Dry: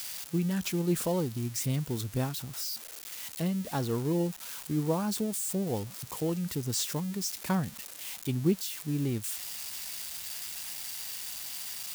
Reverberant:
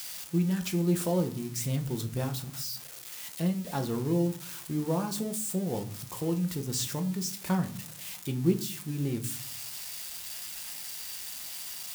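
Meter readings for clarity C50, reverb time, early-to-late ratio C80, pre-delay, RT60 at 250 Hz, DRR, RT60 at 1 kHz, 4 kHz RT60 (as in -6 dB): 14.0 dB, 0.45 s, 18.5 dB, 6 ms, 0.75 s, 5.5 dB, 0.45 s, 0.30 s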